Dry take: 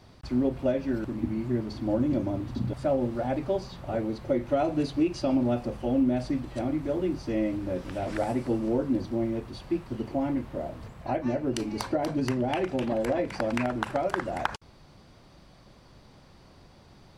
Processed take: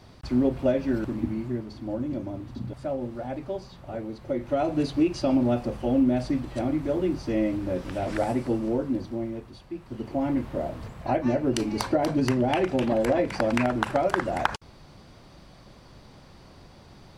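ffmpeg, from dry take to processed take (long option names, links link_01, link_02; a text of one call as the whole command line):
ffmpeg -i in.wav -af "volume=22dB,afade=type=out:start_time=1.09:duration=0.57:silence=0.421697,afade=type=in:start_time=4.17:duration=0.72:silence=0.446684,afade=type=out:start_time=8.24:duration=1.49:silence=0.298538,afade=type=in:start_time=9.73:duration=0.72:silence=0.251189" out.wav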